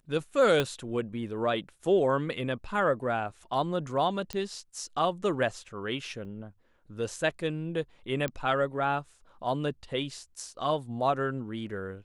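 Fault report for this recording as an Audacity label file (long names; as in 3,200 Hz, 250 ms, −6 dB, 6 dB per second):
0.600000	0.600000	click −13 dBFS
4.330000	4.330000	click −17 dBFS
6.250000	6.250000	drop-out 2.6 ms
8.280000	8.280000	click −18 dBFS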